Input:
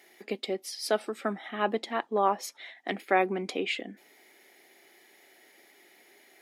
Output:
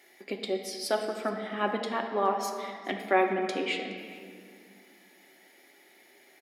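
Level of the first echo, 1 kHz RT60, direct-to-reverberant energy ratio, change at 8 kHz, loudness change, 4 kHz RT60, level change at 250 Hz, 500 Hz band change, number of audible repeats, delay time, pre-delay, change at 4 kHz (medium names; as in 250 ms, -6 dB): -22.5 dB, 2.1 s, 2.5 dB, -0.5 dB, 0.0 dB, 1.6 s, +1.0 dB, +0.5 dB, 1, 418 ms, 3 ms, 0.0 dB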